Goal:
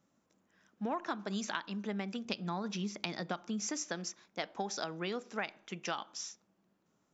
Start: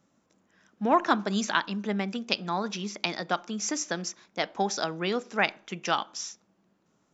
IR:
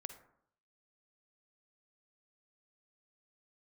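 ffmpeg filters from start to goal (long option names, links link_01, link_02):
-filter_complex "[0:a]asettb=1/sr,asplit=3[link_01][link_02][link_03];[link_01]atrim=end=2.254[link_04];[link_02]atrim=start=2.25:end=3.67,asetpts=PTS-STARTPTS,afade=type=in:duration=0.004:curve=qsin,afade=type=out:start_time=1.416:duration=0.004:curve=qsin,equalizer=frequency=94:width_type=o:width=2.7:gain=9.5[link_05];[link_03]atrim=start=3.666[link_06];[link_04][link_05]acrossfade=duration=0.004:curve1=hsin:curve2=qsin[link_07];[link_07][link_06]acrossfade=duration=0.004:curve1=qsin:curve2=hsin,acompressor=threshold=-26dB:ratio=10,volume=-6dB"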